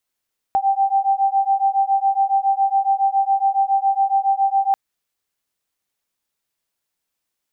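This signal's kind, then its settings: beating tones 780 Hz, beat 7.2 Hz, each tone -18 dBFS 4.19 s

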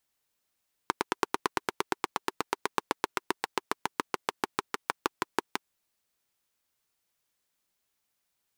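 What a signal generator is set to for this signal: single-cylinder engine model, changing speed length 4.71 s, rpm 1100, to 700, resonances 390/950 Hz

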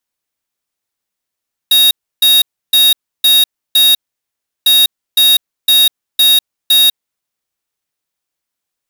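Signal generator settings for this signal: beep pattern square 3.76 kHz, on 0.20 s, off 0.31 s, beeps 5, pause 0.71 s, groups 2, -8 dBFS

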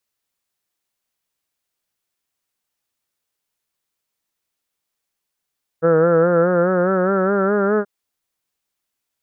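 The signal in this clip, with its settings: formant-synthesis vowel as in heard, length 2.03 s, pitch 161 Hz, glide +4.5 st, vibrato 4.8 Hz, vibrato depth 0.65 st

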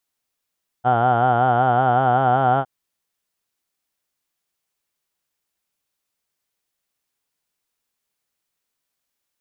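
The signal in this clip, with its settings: formant vowel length 1.81 s, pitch 120 Hz, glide +1.5 st, F1 750 Hz, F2 1.4 kHz, F3 3.1 kHz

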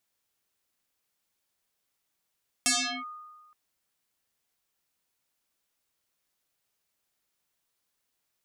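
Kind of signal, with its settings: FM tone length 0.87 s, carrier 1.23 kHz, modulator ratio 0.79, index 9.5, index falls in 0.38 s linear, decay 1.40 s, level -20 dB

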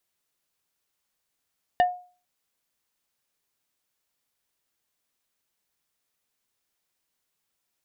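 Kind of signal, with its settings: wood hit plate, lowest mode 720 Hz, decay 0.39 s, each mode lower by 8 dB, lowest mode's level -13.5 dB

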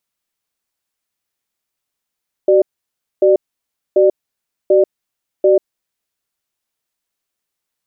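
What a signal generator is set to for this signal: cadence 379 Hz, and 595 Hz, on 0.14 s, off 0.60 s, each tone -10 dBFS 3.22 s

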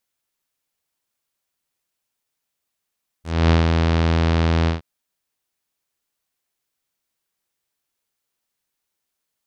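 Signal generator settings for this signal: synth note saw E2 24 dB/octave, low-pass 5 kHz, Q 0.87, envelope 1.5 oct, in 0.09 s, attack 262 ms, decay 0.14 s, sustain -4 dB, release 0.14 s, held 1.43 s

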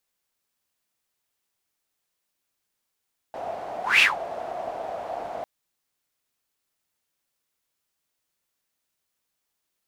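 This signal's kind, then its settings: whoosh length 2.10 s, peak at 0.67 s, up 0.20 s, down 0.16 s, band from 690 Hz, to 2.7 kHz, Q 7.6, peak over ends 17 dB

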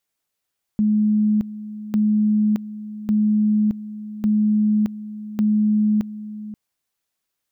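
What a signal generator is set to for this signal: two-level tone 212 Hz -14.5 dBFS, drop 15 dB, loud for 0.62 s, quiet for 0.53 s, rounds 5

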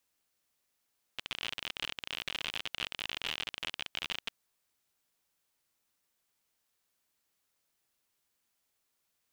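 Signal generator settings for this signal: random clicks 55 per s -19.5 dBFS 3.11 s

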